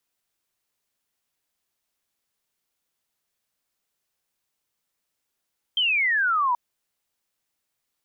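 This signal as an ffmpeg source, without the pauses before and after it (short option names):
-f lavfi -i "aevalsrc='0.112*clip(t/0.002,0,1)*clip((0.78-t)/0.002,0,1)*sin(2*PI*3200*0.78/log(940/3200)*(exp(log(940/3200)*t/0.78)-1))':d=0.78:s=44100"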